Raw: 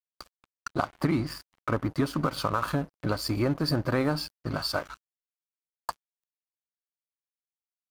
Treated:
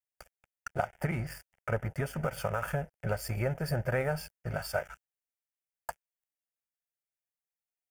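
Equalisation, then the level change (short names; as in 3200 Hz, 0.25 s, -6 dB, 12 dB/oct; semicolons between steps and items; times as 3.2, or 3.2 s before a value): fixed phaser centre 1100 Hz, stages 6; 0.0 dB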